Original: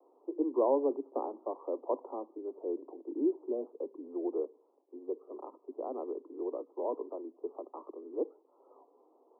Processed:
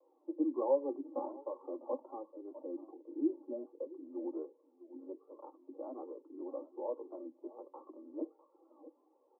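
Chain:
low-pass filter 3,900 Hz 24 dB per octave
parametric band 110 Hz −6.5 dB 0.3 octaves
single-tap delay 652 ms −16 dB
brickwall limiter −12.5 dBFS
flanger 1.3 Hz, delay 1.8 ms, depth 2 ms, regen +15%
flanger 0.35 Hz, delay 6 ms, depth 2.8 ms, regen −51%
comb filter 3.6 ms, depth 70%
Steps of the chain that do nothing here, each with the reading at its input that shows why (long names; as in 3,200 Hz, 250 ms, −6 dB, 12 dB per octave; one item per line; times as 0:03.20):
low-pass filter 3,900 Hz: nothing at its input above 1,100 Hz
parametric band 110 Hz: nothing at its input below 230 Hz
brickwall limiter −12.5 dBFS: peak of its input −17.0 dBFS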